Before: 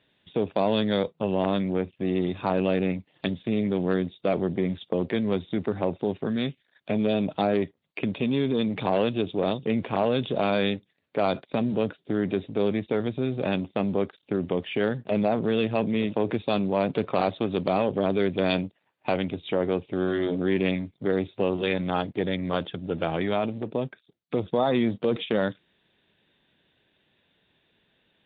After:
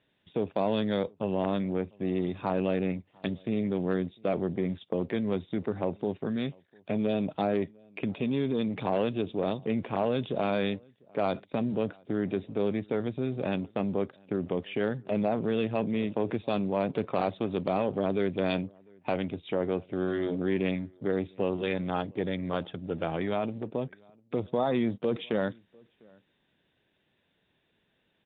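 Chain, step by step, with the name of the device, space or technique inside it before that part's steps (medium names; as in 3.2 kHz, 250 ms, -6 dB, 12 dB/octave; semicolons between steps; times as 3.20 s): shout across a valley (distance through air 170 m; echo from a far wall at 120 m, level -28 dB); trim -3.5 dB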